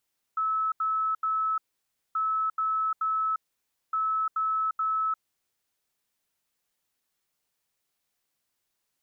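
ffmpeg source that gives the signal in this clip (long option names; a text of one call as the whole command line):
ffmpeg -f lavfi -i "aevalsrc='0.0631*sin(2*PI*1300*t)*clip(min(mod(mod(t,1.78),0.43),0.35-mod(mod(t,1.78),0.43))/0.005,0,1)*lt(mod(t,1.78),1.29)':duration=5.34:sample_rate=44100" out.wav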